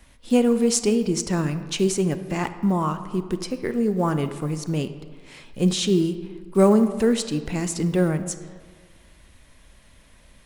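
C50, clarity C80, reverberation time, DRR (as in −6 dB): 11.5 dB, 13.0 dB, 1.6 s, 10.5 dB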